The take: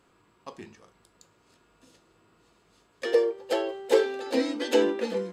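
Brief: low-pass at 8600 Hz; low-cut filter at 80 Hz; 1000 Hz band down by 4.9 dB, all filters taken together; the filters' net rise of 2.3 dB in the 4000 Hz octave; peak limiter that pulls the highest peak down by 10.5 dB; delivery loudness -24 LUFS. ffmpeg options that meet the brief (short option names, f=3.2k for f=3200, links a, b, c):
-af "highpass=80,lowpass=8.6k,equalizer=f=1k:t=o:g=-6.5,equalizer=f=4k:t=o:g=3.5,volume=7dB,alimiter=limit=-13dB:level=0:latency=1"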